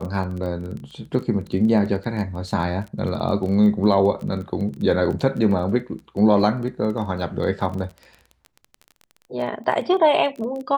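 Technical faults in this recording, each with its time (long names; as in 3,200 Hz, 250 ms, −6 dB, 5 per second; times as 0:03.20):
surface crackle 20 per second −30 dBFS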